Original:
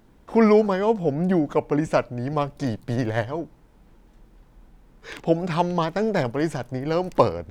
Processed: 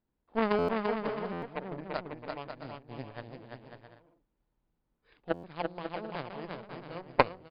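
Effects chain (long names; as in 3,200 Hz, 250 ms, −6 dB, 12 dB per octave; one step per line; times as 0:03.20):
harmonic generator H 3 −10 dB, 6 −32 dB, 8 −32 dB, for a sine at −2.5 dBFS
pitch vibrato 1.6 Hz 28 cents
Chebyshev low-pass filter 4,900 Hz, order 8
on a send: bouncing-ball delay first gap 340 ms, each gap 0.6×, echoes 5
on the sum: buffer that repeats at 0:00.58/0:01.32/0:05.33, samples 512, times 8
level −1 dB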